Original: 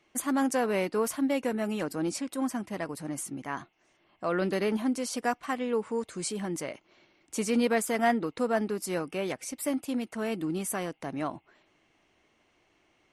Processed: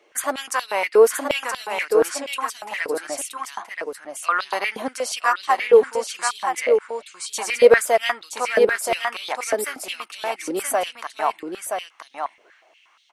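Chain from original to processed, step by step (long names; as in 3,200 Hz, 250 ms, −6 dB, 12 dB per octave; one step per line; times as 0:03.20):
single-tap delay 975 ms −5 dB
high-pass on a step sequencer 8.4 Hz 470–3,700 Hz
level +6.5 dB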